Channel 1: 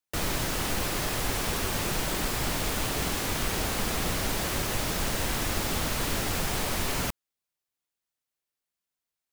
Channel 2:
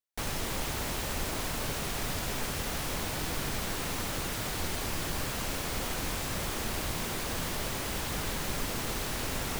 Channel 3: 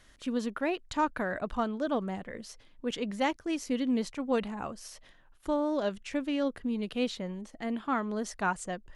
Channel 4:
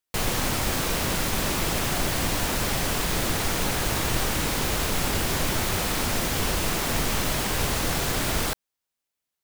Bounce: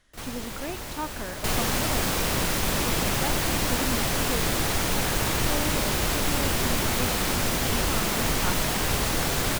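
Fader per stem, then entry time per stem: −17.0, −3.0, −5.0, 0.0 decibels; 0.00, 0.00, 0.00, 1.30 seconds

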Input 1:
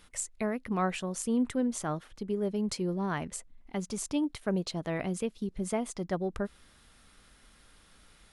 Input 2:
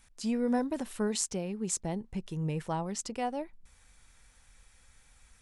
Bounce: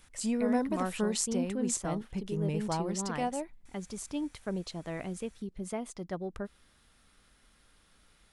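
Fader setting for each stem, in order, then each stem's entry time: −5.0, 0.0 decibels; 0.00, 0.00 seconds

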